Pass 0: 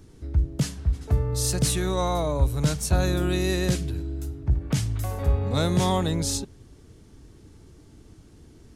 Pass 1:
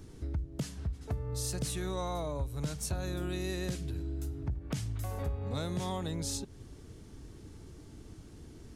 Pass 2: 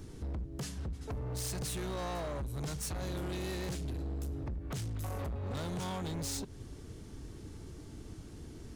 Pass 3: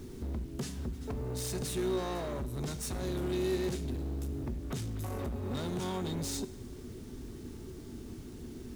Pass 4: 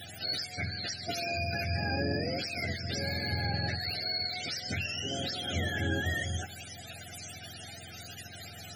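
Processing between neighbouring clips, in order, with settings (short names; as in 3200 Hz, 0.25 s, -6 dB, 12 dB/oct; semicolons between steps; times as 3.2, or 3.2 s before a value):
compressor 4:1, threshold -34 dBFS, peak gain reduction 16 dB
hard clip -37.5 dBFS, distortion -7 dB; gain +2.5 dB
small resonant body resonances 240/370/3700 Hz, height 11 dB, ringing for 90 ms; requantised 10-bit, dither none; reverb RT60 1.0 s, pre-delay 5 ms, DRR 13 dB
spectrum mirrored in octaves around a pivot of 550 Hz; dynamic EQ 490 Hz, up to -4 dB, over -53 dBFS, Q 2.4; elliptic band-stop 710–1500 Hz, stop band 70 dB; gain +8.5 dB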